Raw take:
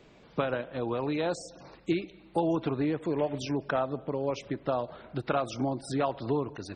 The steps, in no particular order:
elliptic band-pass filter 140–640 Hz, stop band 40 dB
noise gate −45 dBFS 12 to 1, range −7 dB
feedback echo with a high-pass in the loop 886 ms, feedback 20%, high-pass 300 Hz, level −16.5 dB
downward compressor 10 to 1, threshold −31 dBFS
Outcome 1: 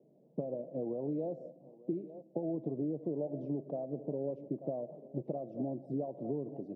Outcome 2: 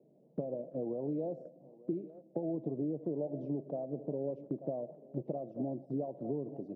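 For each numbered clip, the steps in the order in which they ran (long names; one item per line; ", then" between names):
feedback echo with a high-pass in the loop, then downward compressor, then noise gate, then elliptic band-pass filter
feedback echo with a high-pass in the loop, then downward compressor, then elliptic band-pass filter, then noise gate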